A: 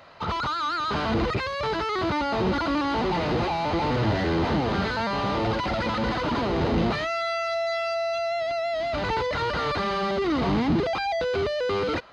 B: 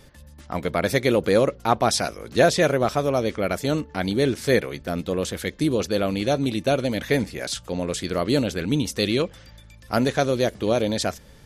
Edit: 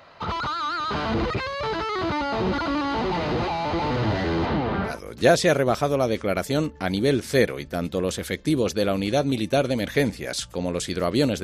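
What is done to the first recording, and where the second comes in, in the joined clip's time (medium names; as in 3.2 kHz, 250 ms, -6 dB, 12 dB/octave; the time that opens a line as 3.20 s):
A
4.45–5.00 s: low-pass 4.9 kHz -> 1.5 kHz
4.92 s: go over to B from 2.06 s, crossfade 0.16 s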